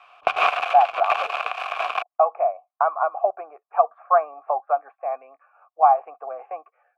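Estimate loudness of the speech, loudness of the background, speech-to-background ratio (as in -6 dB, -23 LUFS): -22.5 LUFS, -25.0 LUFS, 2.5 dB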